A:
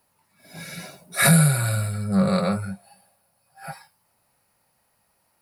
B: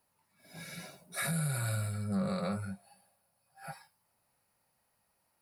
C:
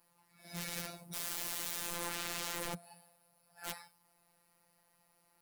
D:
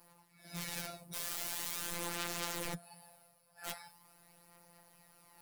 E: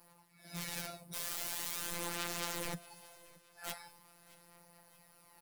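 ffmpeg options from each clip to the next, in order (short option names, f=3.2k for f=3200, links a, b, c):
-af "alimiter=limit=-16.5dB:level=0:latency=1:release=97,volume=-8.5dB"
-af "aeval=exprs='(mod(100*val(0)+1,2)-1)/100':c=same,afftfilt=real='hypot(re,im)*cos(PI*b)':imag='0':win_size=1024:overlap=0.75,volume=8dB"
-af "areverse,acompressor=mode=upward:threshold=-49dB:ratio=2.5,areverse,flanger=delay=5.6:depth=2.1:regen=57:speed=0.43:shape=triangular,volume=4dB"
-af "aecho=1:1:625|1250|1875:0.0841|0.0353|0.0148"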